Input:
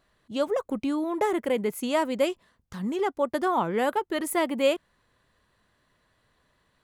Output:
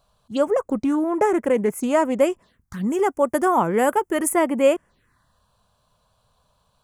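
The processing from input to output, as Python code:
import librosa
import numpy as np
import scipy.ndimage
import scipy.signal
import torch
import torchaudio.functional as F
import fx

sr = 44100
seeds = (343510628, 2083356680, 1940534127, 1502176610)

y = fx.high_shelf(x, sr, hz=6000.0, db=11.0, at=(2.9, 4.29))
y = fx.env_phaser(y, sr, low_hz=320.0, high_hz=4000.0, full_db=-26.5)
y = fx.doppler_dist(y, sr, depth_ms=0.1, at=(0.85, 2.21))
y = F.gain(torch.from_numpy(y), 6.5).numpy()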